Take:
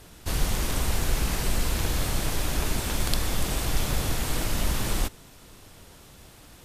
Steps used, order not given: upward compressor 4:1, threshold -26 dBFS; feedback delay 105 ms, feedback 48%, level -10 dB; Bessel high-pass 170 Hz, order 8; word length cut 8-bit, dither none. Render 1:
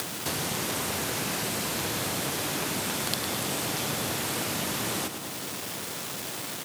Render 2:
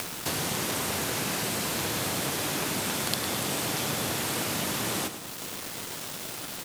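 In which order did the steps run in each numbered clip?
feedback delay > word length cut > Bessel high-pass > upward compressor; Bessel high-pass > word length cut > upward compressor > feedback delay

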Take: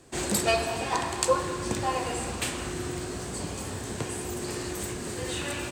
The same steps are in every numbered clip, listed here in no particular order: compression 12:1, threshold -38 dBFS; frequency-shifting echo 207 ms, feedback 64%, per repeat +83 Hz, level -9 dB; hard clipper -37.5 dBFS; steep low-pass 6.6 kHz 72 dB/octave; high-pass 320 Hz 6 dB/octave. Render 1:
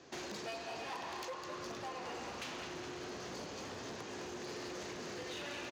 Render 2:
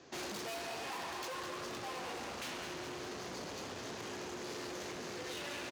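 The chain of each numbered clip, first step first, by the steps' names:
steep low-pass > compression > frequency-shifting echo > hard clipper > high-pass; steep low-pass > hard clipper > frequency-shifting echo > compression > high-pass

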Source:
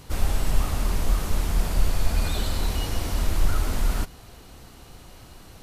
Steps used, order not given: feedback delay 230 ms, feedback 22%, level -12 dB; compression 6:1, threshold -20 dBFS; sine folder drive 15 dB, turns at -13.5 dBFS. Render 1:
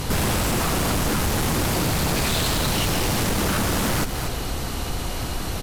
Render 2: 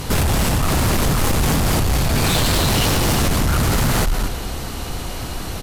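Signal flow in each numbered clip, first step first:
sine folder > feedback delay > compression; feedback delay > compression > sine folder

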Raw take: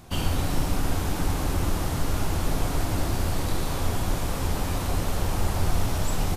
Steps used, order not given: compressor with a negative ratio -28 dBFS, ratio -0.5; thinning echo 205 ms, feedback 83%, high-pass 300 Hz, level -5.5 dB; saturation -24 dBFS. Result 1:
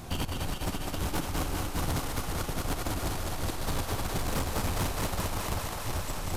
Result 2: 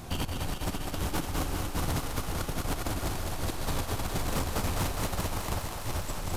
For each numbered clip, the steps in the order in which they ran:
compressor with a negative ratio > thinning echo > saturation; compressor with a negative ratio > saturation > thinning echo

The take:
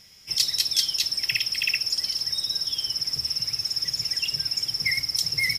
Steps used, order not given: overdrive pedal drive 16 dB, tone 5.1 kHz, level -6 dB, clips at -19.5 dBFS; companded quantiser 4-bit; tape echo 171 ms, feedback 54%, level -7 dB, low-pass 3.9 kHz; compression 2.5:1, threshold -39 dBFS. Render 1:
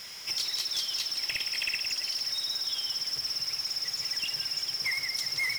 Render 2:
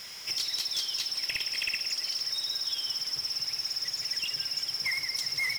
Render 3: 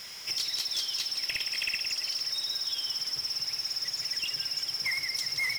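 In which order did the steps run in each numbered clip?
compression > companded quantiser > tape echo > overdrive pedal; companded quantiser > compression > overdrive pedal > tape echo; companded quantiser > compression > tape echo > overdrive pedal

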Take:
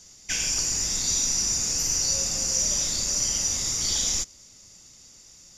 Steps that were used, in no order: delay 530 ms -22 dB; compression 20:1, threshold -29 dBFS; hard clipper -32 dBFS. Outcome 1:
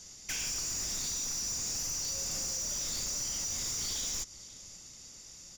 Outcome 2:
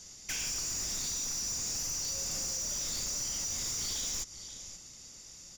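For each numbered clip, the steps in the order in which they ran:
compression > delay > hard clipper; delay > compression > hard clipper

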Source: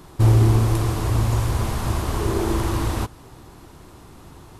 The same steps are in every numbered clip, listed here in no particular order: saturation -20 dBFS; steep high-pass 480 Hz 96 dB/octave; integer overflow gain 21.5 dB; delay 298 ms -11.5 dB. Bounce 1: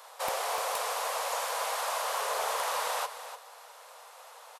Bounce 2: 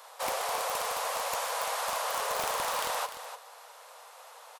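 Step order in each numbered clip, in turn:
steep high-pass > saturation > integer overflow > delay; steep high-pass > integer overflow > delay > saturation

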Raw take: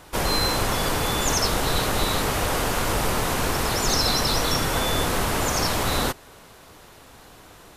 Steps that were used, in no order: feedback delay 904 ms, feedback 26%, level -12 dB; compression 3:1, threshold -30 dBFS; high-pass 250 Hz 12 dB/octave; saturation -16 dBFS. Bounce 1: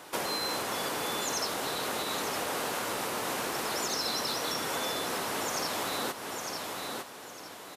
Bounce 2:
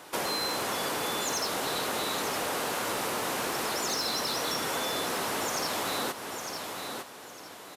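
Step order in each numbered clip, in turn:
feedback delay > compression > saturation > high-pass; high-pass > saturation > feedback delay > compression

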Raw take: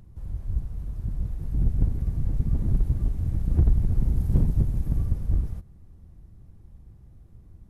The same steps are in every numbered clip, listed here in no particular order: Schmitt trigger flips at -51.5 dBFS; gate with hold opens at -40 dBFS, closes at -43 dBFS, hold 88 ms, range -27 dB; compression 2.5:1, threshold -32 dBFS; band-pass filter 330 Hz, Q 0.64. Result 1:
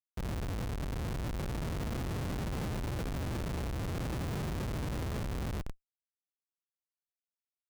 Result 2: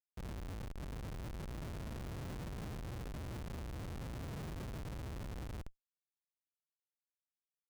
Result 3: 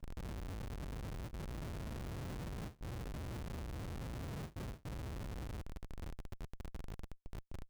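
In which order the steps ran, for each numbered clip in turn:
band-pass filter > gate with hold > Schmitt trigger > compression; compression > band-pass filter > gate with hold > Schmitt trigger; compression > band-pass filter > Schmitt trigger > gate with hold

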